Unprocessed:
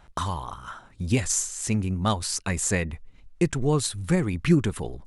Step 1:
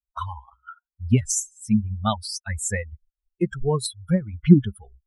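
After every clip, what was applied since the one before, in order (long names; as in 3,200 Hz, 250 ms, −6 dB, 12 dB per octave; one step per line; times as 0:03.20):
spectral dynamics exaggerated over time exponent 3
thirty-one-band graphic EQ 125 Hz +5 dB, 200 Hz +10 dB, 2,500 Hz −9 dB
level +5 dB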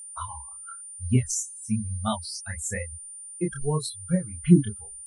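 chorus effect 0.98 Hz, depth 6.1 ms
steady tone 9,200 Hz −38 dBFS
level −1 dB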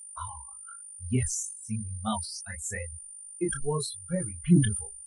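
flanger 0.65 Hz, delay 0.9 ms, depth 4.2 ms, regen +30%
level that may fall only so fast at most 77 dB per second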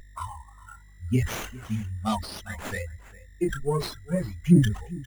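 single-tap delay 404 ms −19.5 dB
windowed peak hold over 5 samples
level +3.5 dB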